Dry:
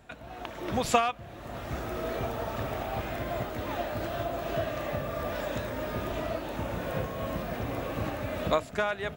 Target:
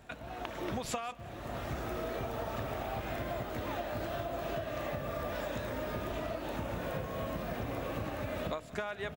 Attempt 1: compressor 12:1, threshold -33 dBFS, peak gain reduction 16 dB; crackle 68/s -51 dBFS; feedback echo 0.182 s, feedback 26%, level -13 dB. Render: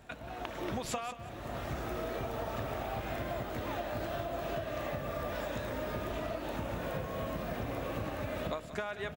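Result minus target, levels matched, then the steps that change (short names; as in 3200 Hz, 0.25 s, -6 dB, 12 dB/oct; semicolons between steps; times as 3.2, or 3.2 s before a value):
echo-to-direct +7 dB
change: feedback echo 0.182 s, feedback 26%, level -20 dB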